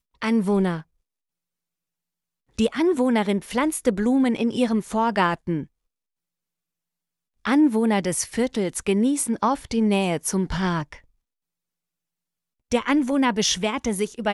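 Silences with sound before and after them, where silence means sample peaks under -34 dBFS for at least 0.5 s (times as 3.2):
0.81–2.58
5.63–7.45
10.96–12.71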